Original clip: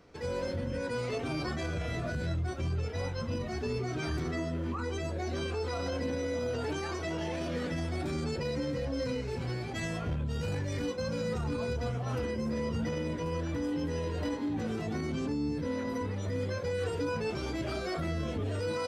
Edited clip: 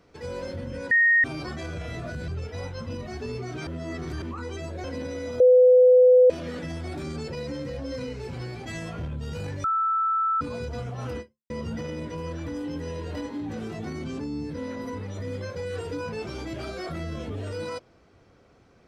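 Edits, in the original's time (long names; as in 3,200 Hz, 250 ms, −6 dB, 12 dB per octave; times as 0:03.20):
0:00.91–0:01.24: beep over 1,860 Hz −15.5 dBFS
0:02.28–0:02.69: remove
0:04.08–0:04.63: reverse
0:05.25–0:05.92: remove
0:06.48–0:07.38: beep over 503 Hz −11.5 dBFS
0:10.72–0:11.49: beep over 1,320 Hz −21 dBFS
0:12.28–0:12.58: fade out exponential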